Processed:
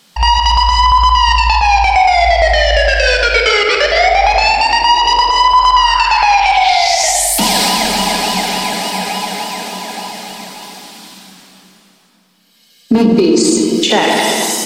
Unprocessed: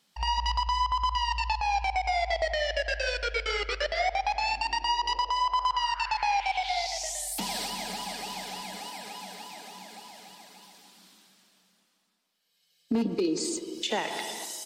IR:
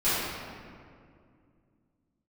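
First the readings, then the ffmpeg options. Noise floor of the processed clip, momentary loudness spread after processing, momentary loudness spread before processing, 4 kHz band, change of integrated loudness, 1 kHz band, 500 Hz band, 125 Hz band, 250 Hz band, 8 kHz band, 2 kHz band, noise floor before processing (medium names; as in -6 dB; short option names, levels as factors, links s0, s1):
-50 dBFS, 12 LU, 14 LU, +18.5 dB, +18.5 dB, +18.0 dB, +18.5 dB, no reading, +19.5 dB, +19.5 dB, +18.5 dB, -72 dBFS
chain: -filter_complex "[0:a]asplit=2[s0][s1];[1:a]atrim=start_sample=2205[s2];[s1][s2]afir=irnorm=-1:irlink=0,volume=0.168[s3];[s0][s3]amix=inputs=2:normalize=0,alimiter=level_in=9.44:limit=0.891:release=50:level=0:latency=1,volume=0.891"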